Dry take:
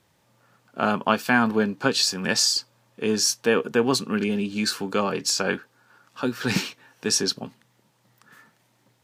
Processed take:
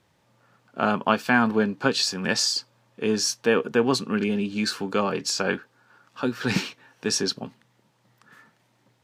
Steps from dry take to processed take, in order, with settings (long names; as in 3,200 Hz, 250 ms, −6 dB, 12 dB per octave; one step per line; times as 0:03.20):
high-shelf EQ 7,900 Hz −9.5 dB